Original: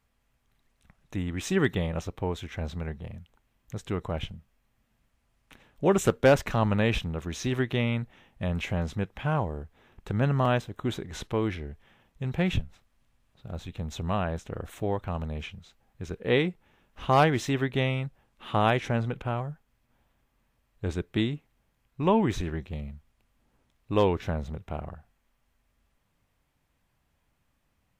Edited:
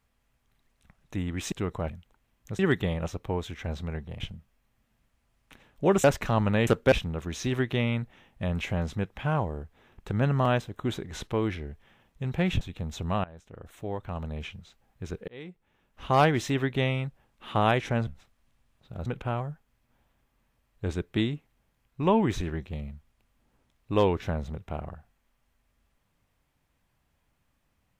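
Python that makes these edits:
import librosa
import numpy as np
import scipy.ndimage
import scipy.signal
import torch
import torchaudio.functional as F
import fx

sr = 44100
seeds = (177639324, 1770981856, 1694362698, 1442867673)

y = fx.edit(x, sr, fx.swap(start_s=1.52, length_s=1.61, other_s=3.82, other_length_s=0.38),
    fx.move(start_s=6.04, length_s=0.25, to_s=6.92),
    fx.move(start_s=12.61, length_s=0.99, to_s=19.06),
    fx.fade_in_from(start_s=14.23, length_s=1.29, floor_db=-20.0),
    fx.fade_in_span(start_s=16.27, length_s=0.97), tone=tone)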